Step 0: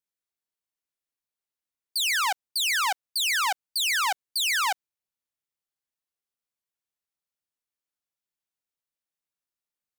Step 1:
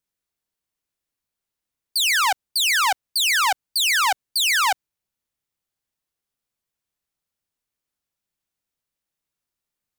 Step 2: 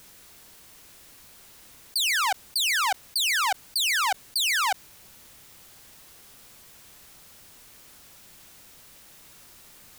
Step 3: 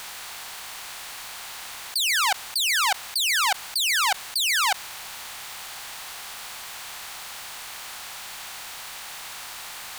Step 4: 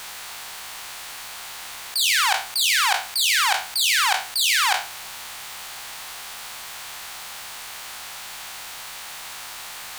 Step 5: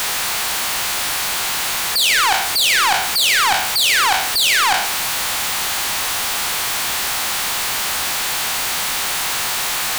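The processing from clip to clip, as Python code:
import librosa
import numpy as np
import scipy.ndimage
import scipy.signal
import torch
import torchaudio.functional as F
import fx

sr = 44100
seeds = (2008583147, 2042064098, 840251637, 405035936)

y1 = fx.low_shelf(x, sr, hz=230.0, db=8.0)
y1 = F.gain(torch.from_numpy(y1), 5.5).numpy()
y2 = fx.env_flatten(y1, sr, amount_pct=70)
y2 = F.gain(torch.from_numpy(y2), -5.5).numpy()
y3 = fx.bin_compress(y2, sr, power=0.6)
y4 = fx.spec_trails(y3, sr, decay_s=0.4)
y5 = y4 + 0.5 * 10.0 ** (-17.5 / 20.0) * np.sign(y4)
y5 = F.gain(torch.from_numpy(y5), 1.0).numpy()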